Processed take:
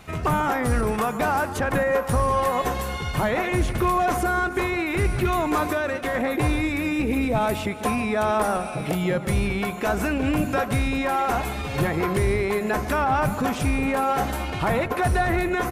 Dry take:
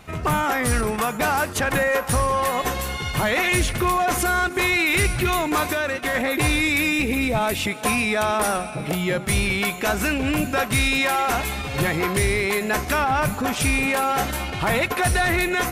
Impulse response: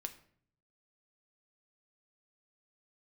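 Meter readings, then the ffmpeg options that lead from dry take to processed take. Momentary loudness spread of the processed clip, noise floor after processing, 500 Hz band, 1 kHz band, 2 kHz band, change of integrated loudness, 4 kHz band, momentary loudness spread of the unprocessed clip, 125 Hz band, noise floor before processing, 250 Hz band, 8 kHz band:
4 LU, −31 dBFS, +0.5 dB, −0.5 dB, −6.0 dB, −2.5 dB, −9.0 dB, 5 LU, 0.0 dB, −31 dBFS, +0.5 dB, −9.5 dB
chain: -filter_complex "[0:a]acrossover=split=1500[link_01][link_02];[link_01]aecho=1:1:145:0.237[link_03];[link_02]acompressor=threshold=-35dB:ratio=6[link_04];[link_03][link_04]amix=inputs=2:normalize=0"

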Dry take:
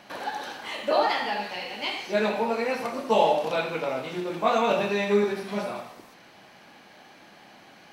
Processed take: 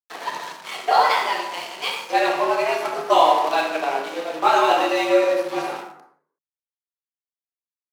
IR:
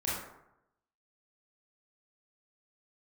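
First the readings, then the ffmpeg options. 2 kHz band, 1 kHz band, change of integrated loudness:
+5.5 dB, +8.5 dB, +6.0 dB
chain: -filter_complex "[0:a]aeval=exprs='sgn(val(0))*max(abs(val(0))-0.0112,0)':channel_layout=same,afreqshift=150,asplit=2[link_01][link_02];[1:a]atrim=start_sample=2205,afade=type=out:start_time=0.43:duration=0.01,atrim=end_sample=19404[link_03];[link_02][link_03]afir=irnorm=-1:irlink=0,volume=-9dB[link_04];[link_01][link_04]amix=inputs=2:normalize=0,volume=4dB"

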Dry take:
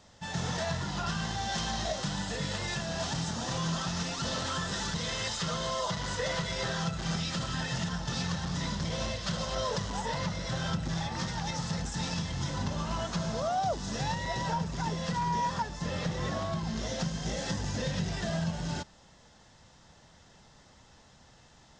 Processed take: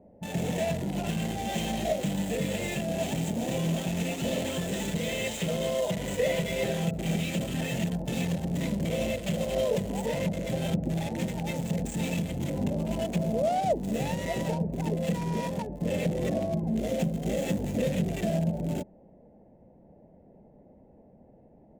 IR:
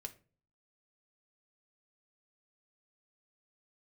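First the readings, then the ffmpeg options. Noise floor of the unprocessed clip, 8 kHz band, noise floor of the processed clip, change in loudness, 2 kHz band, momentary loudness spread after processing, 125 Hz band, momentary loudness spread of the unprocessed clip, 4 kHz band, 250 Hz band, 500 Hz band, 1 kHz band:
−58 dBFS, −1.5 dB, −56 dBFS, +3.0 dB, −1.0 dB, 3 LU, +3.0 dB, 2 LU, −4.0 dB, +6.5 dB, +7.5 dB, −2.5 dB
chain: -filter_complex "[0:a]firequalizer=gain_entry='entry(120,0);entry(200,10);entry(610,10);entry(1200,-16);entry(2300,10);entry(5100,-15);entry(7400,7)':delay=0.05:min_phase=1,acrossover=split=1100[link_01][link_02];[link_02]acrusher=bits=5:mix=0:aa=0.5[link_03];[link_01][link_03]amix=inputs=2:normalize=0,volume=-1.5dB"

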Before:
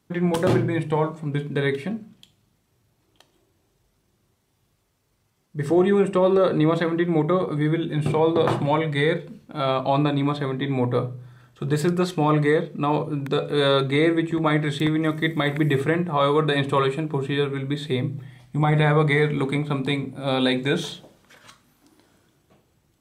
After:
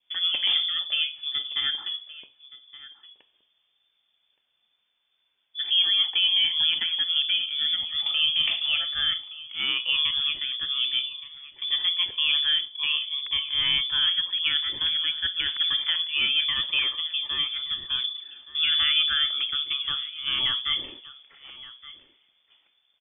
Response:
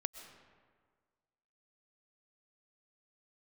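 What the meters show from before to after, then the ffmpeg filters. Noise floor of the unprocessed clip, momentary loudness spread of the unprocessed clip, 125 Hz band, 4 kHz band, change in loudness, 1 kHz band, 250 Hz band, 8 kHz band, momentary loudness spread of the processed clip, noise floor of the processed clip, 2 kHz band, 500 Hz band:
−69 dBFS, 8 LU, below −30 dB, +14.0 dB, −0.5 dB, −17.0 dB, below −30 dB, below −35 dB, 11 LU, −73 dBFS, −2.0 dB, below −30 dB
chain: -af "aecho=1:1:1171:0.119,lowpass=frequency=3100:width_type=q:width=0.5098,lowpass=frequency=3100:width_type=q:width=0.6013,lowpass=frequency=3100:width_type=q:width=0.9,lowpass=frequency=3100:width_type=q:width=2.563,afreqshift=-3600,adynamicequalizer=threshold=0.01:dfrequency=1500:dqfactor=2.1:tfrequency=1500:tqfactor=2.1:attack=5:release=100:ratio=0.375:range=2.5:mode=cutabove:tftype=bell,volume=-4dB"

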